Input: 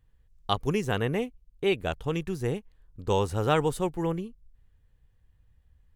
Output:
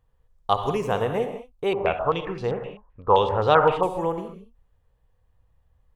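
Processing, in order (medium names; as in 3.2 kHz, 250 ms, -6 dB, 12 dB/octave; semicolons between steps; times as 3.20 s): high-order bell 750 Hz +9.5 dB; reverberation, pre-delay 49 ms, DRR 6.5 dB; 1.73–3.83 s: step-sequenced low-pass 7.7 Hz 990–4300 Hz; trim -2.5 dB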